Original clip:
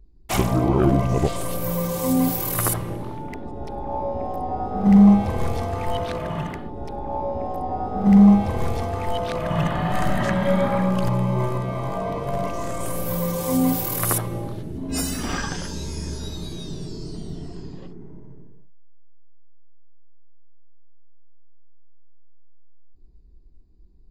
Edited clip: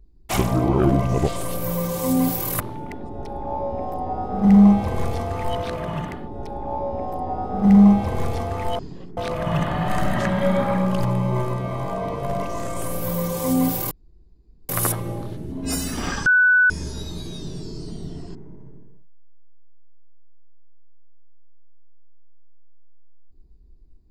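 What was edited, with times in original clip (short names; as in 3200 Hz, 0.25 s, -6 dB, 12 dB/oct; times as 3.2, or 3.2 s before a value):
2.6–3.02 cut
13.95 insert room tone 0.78 s
15.52–15.96 bleep 1490 Hz -12 dBFS
17.61–17.99 move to 9.21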